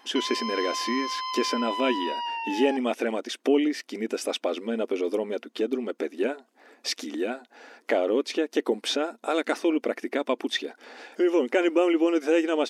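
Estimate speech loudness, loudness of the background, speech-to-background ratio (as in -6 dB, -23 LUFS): -27.0 LUFS, -31.5 LUFS, 4.5 dB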